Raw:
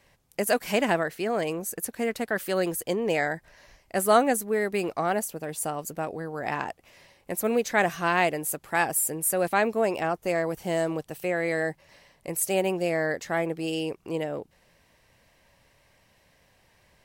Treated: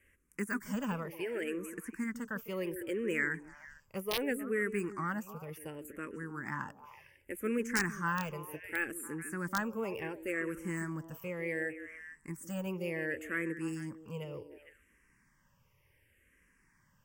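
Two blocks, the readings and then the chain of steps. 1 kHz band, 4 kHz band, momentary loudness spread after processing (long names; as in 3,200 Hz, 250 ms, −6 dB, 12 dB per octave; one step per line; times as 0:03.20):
−14.0 dB, −9.5 dB, 12 LU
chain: de-essing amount 75%
phaser with its sweep stopped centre 1,700 Hz, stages 4
echo through a band-pass that steps 151 ms, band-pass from 320 Hz, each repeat 1.4 octaves, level −7 dB
wrap-around overflow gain 17 dB
frequency shifter mixed with the dry sound −0.68 Hz
level −2 dB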